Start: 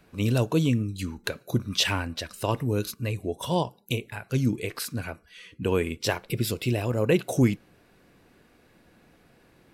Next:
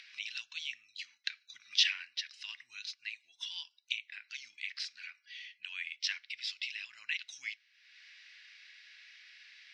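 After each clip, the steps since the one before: elliptic band-pass 1.9–5.5 kHz, stop band 60 dB; upward compressor, threshold -41 dBFS; trim -1.5 dB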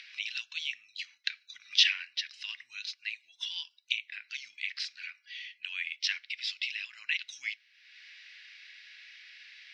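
peaking EQ 2.7 kHz +8 dB 2.7 oct; trim -3 dB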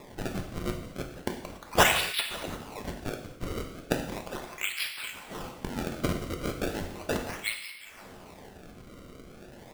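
frequency-shifting echo 177 ms, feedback 56%, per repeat +45 Hz, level -13 dB; decimation with a swept rate 29×, swing 160% 0.36 Hz; gated-style reverb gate 310 ms falling, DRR 3.5 dB; trim +2.5 dB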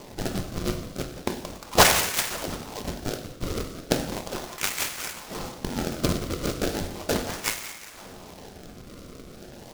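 delay time shaken by noise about 3.9 kHz, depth 0.09 ms; trim +4.5 dB

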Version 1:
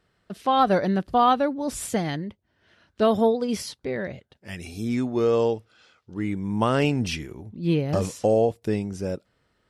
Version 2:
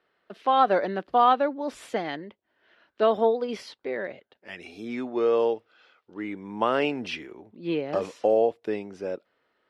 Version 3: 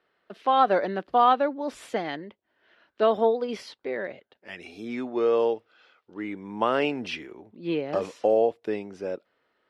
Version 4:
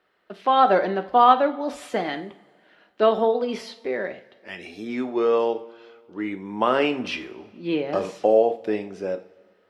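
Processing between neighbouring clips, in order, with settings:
three-band isolator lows -23 dB, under 280 Hz, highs -20 dB, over 4 kHz
no audible change
two-slope reverb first 0.4 s, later 2.1 s, from -20 dB, DRR 7.5 dB; trim +3 dB

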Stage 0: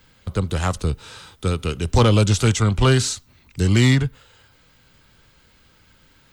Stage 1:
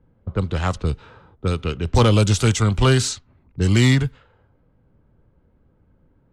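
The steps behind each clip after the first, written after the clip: level-controlled noise filter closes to 540 Hz, open at -14.5 dBFS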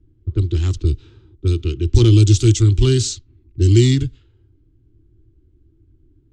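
FFT filter 110 Hz 0 dB, 200 Hz -19 dB, 340 Hz +6 dB, 520 Hz -27 dB, 1 kHz -25 dB, 2 kHz -17 dB, 3.2 kHz -7 dB, 7.3 kHz -4 dB, 11 kHz -19 dB; trim +6.5 dB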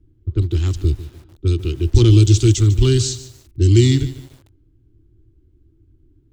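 bit-crushed delay 148 ms, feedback 35%, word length 6-bit, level -15 dB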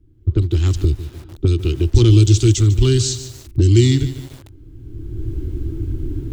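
recorder AGC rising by 22 dB/s

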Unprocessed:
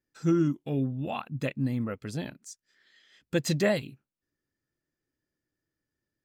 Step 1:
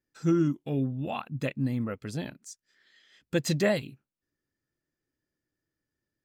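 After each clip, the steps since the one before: no audible change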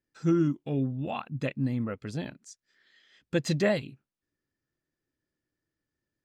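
distance through air 51 m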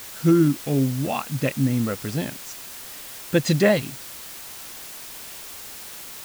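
added noise white -46 dBFS; trim +7.5 dB

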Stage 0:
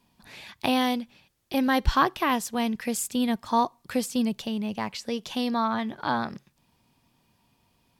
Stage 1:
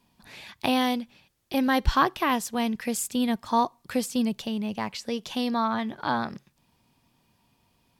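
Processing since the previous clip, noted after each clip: no audible change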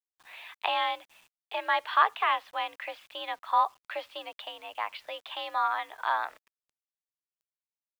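mistuned SSB +64 Hz 590–3400 Hz; bit crusher 10-bit

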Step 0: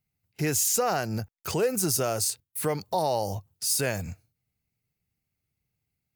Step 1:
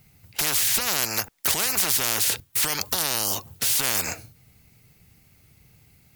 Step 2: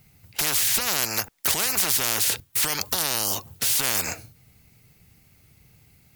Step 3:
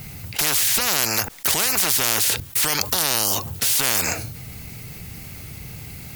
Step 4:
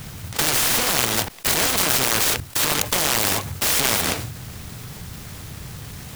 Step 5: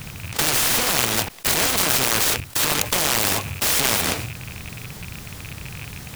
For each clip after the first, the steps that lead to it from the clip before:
spectrum-flattening compressor 10:1; trim +8 dB
no audible change
level flattener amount 50%; trim +1.5 dB
delay time shaken by noise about 1.3 kHz, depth 0.14 ms; trim +1.5 dB
rattle on loud lows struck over -33 dBFS, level -23 dBFS

